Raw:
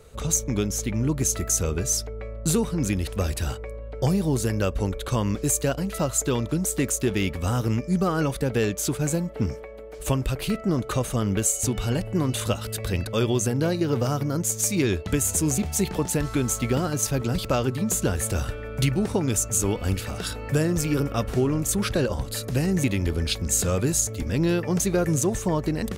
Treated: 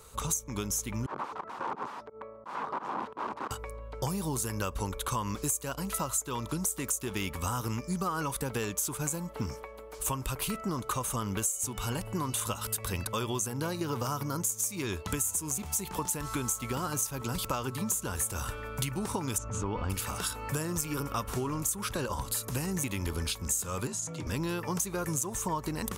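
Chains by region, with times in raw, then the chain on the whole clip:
1.06–3.51 s: integer overflow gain 24.5 dB + volume shaper 87 bpm, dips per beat 2, -23 dB, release 103 ms + Butterworth band-pass 530 Hz, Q 0.51
19.38–19.90 s: tape spacing loss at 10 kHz 36 dB + level flattener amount 70%
23.87–24.27 s: compression 5:1, threshold -26 dBFS + frequency shift +54 Hz + distance through air 84 m
whole clip: FFT filter 690 Hz 0 dB, 980 Hz +14 dB, 1.8 kHz +3 dB, 11 kHz +14 dB; compression 6:1, threshold -22 dBFS; dynamic bell 4.4 kHz, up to -5 dB, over -43 dBFS, Q 2.6; trim -6.5 dB

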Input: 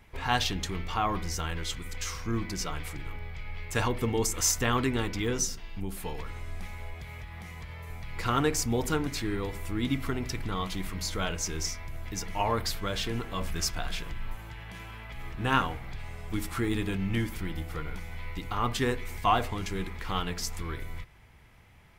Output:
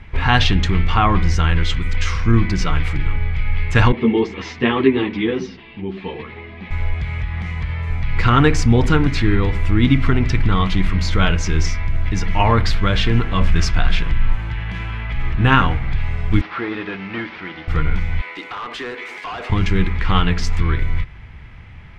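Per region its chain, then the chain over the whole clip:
3.92–6.71 s: cabinet simulation 200–3900 Hz, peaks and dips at 240 Hz +4 dB, 380 Hz +8 dB, 1.4 kHz -9 dB + three-phase chorus
16.41–17.68 s: one-bit delta coder 32 kbps, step -44.5 dBFS + high-pass 470 Hz + distance through air 190 m
18.21–19.50 s: high-pass 340 Hz 24 dB/octave + compression 2.5:1, threshold -35 dBFS + hard clipper -37.5 dBFS
whole clip: low-pass 2.3 kHz 12 dB/octave; peaking EQ 600 Hz -11 dB 2.8 oct; loudness maximiser +21.5 dB; trim -1 dB

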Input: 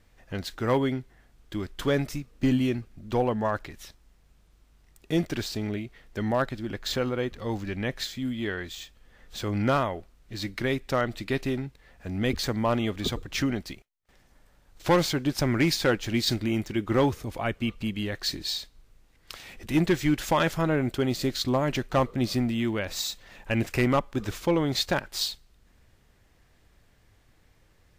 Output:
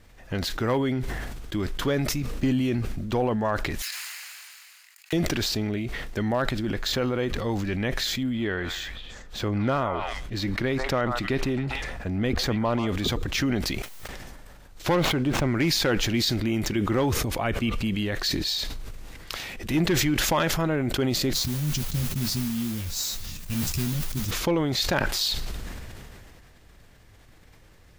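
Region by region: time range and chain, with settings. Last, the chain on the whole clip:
3.82–5.13 s: comb filter that takes the minimum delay 0.44 ms + high-pass 1.2 kHz 24 dB/octave
8.23–12.89 s: treble shelf 3.6 kHz -7.5 dB + repeats whose band climbs or falls 132 ms, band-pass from 1 kHz, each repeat 1.4 oct, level -7.5 dB
14.95–15.55 s: median filter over 9 samples + treble shelf 5.9 kHz -7.5 dB + band-stop 1.7 kHz, Q 14
21.33–24.31 s: Chebyshev band-stop 150–5800 Hz + modulation noise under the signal 11 dB + doubling 13 ms -5 dB
whole clip: compression 2:1, threshold -34 dBFS; dynamic bell 8.3 kHz, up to -4 dB, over -59 dBFS, Q 3.3; decay stretcher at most 22 dB/s; trim +6.5 dB

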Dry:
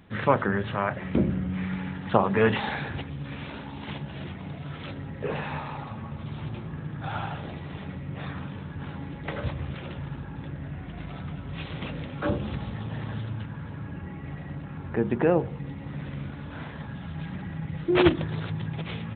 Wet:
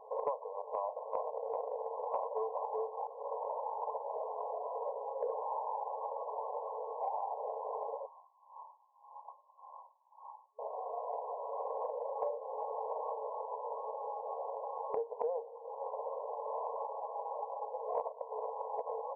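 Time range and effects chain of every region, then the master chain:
0.58–3.07 s: delay 384 ms -5.5 dB + transformer saturation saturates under 2.5 kHz
8.06–10.59 s: inverse Chebyshev high-pass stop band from 320 Hz, stop band 60 dB + logarithmic tremolo 1.8 Hz, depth 26 dB
whole clip: FFT band-pass 430–1100 Hz; compression 8:1, threshold -46 dBFS; trim +11.5 dB

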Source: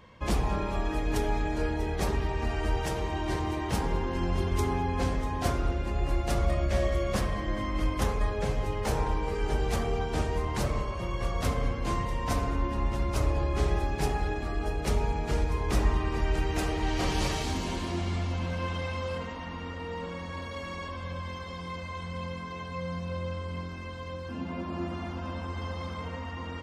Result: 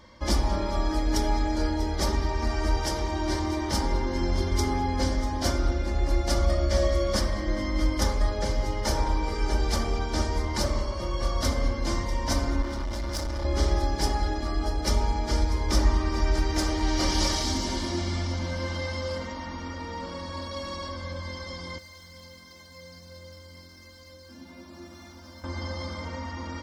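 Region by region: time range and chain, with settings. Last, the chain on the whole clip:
12.62–13.45 s: treble shelf 4.5 kHz +4 dB + overload inside the chain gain 31.5 dB
21.78–25.44 s: median filter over 5 samples + pre-emphasis filter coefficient 0.8
whole clip: peaking EQ 5.2 kHz +11.5 dB 0.55 oct; band-stop 2.6 kHz, Q 6; comb 3.4 ms, depth 58%; trim +1 dB

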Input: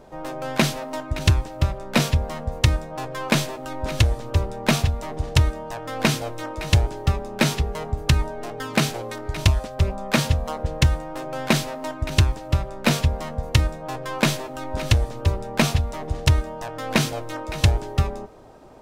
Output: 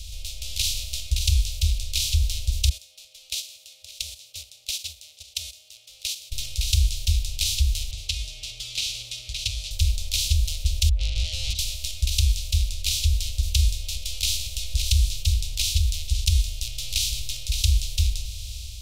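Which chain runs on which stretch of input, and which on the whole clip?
2.69–6.32 s: gate -22 dBFS, range -19 dB + ladder high-pass 530 Hz, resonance 60% + tape noise reduction on one side only decoder only
7.91–9.71 s: band-pass 250–3300 Hz + comb 6.8 ms, depth 80%
10.89–11.59 s: spectral contrast enhancement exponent 3.1 + resonant low shelf 190 Hz -9.5 dB, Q 3 + overdrive pedal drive 35 dB, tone 1.5 kHz, clips at -6.5 dBFS
whole clip: spectral levelling over time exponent 0.4; inverse Chebyshev band-stop 140–1800 Hz, stop band 40 dB; level rider gain up to 4.5 dB; trim -4 dB

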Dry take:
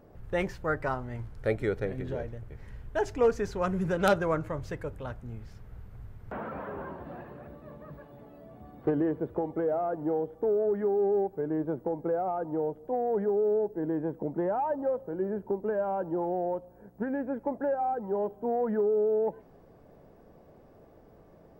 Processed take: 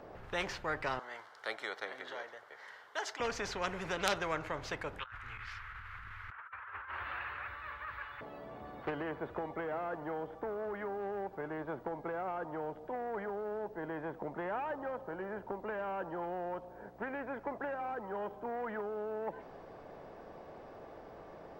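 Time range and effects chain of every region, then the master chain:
0.99–3.20 s: high-pass 910 Hz + peaking EQ 2.5 kHz -14.5 dB 0.23 oct
4.99–8.21 s: FFT filter 100 Hz 0 dB, 160 Hz -30 dB, 320 Hz -23 dB, 650 Hz -23 dB, 1.3 kHz +12 dB, 2.5 kHz +6 dB, 5.3 kHz -5 dB + compressor with a negative ratio -44 dBFS, ratio -0.5
whole clip: three-band isolator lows -13 dB, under 420 Hz, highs -16 dB, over 5.6 kHz; spectrum-flattening compressor 2:1; trim +2.5 dB

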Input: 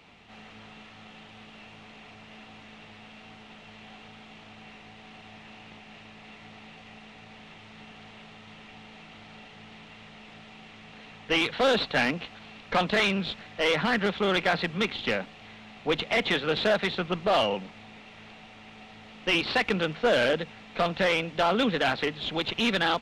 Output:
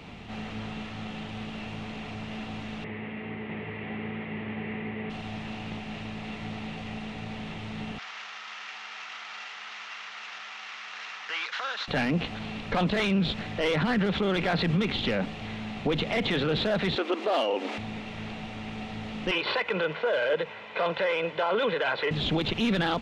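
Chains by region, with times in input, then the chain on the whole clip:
2.84–5.10 s: cabinet simulation 100–2600 Hz, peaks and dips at 400 Hz +9 dB, 720 Hz -4 dB, 1.4 kHz -4 dB, 2 kHz +8 dB + delay 651 ms -4.5 dB
7.98–11.88 s: CVSD coder 32 kbps + compression 4:1, threshold -39 dBFS + resonant high-pass 1.3 kHz, resonance Q 2
16.96–17.78 s: upward compressor, threshold -31 dBFS + brick-wall FIR high-pass 230 Hz
19.31–22.11 s: high-pass 150 Hz + three-band isolator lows -15 dB, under 480 Hz, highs -16 dB, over 3.3 kHz + comb 2 ms, depth 55%
whole clip: bass shelf 400 Hz +10 dB; peak limiter -25 dBFS; trim +6.5 dB

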